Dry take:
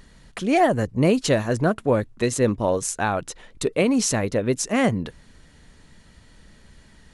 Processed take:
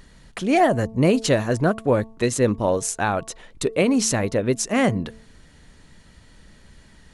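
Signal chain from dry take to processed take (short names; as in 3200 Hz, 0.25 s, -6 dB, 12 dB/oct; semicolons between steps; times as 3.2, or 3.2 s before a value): de-hum 222.6 Hz, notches 5; gain +1 dB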